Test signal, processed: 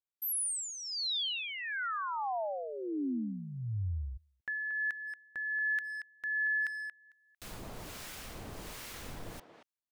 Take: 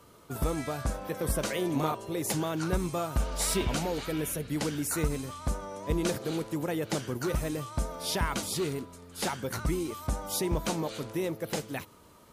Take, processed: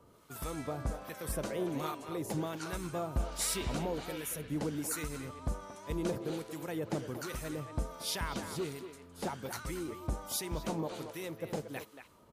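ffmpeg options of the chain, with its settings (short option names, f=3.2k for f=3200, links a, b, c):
-filter_complex "[0:a]acrossover=split=1100[a][b];[a]aeval=exprs='val(0)*(1-0.7/2+0.7/2*cos(2*PI*1.3*n/s))':c=same[c];[b]aeval=exprs='val(0)*(1-0.7/2-0.7/2*cos(2*PI*1.3*n/s))':c=same[d];[c][d]amix=inputs=2:normalize=0,asplit=2[e][f];[f]adelay=230,highpass=300,lowpass=3.4k,asoftclip=type=hard:threshold=-26.5dB,volume=-8dB[g];[e][g]amix=inputs=2:normalize=0,volume=-3dB"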